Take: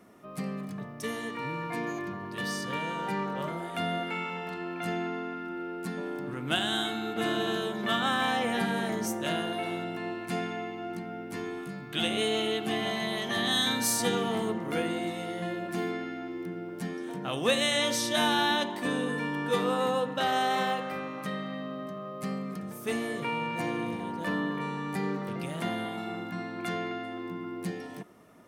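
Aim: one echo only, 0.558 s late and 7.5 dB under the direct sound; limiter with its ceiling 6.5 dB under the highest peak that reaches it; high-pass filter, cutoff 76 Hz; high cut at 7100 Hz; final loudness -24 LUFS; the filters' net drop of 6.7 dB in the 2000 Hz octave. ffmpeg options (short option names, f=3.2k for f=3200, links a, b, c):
-af "highpass=76,lowpass=7.1k,equalizer=f=2k:t=o:g=-8.5,alimiter=limit=-21.5dB:level=0:latency=1,aecho=1:1:558:0.422,volume=9dB"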